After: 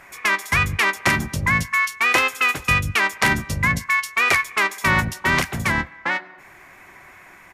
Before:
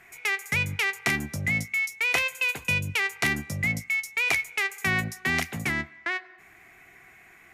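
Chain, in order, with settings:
pitch-shifted copies added −12 semitones −5 dB, −7 semitones −18 dB, −4 semitones −5 dB
level +5 dB

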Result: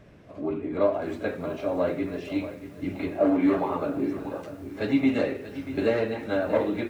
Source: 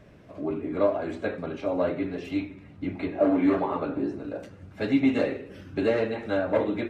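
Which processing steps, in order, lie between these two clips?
echo ahead of the sound 35 ms −16 dB
feedback echo at a low word length 636 ms, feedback 35%, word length 8 bits, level −12.5 dB

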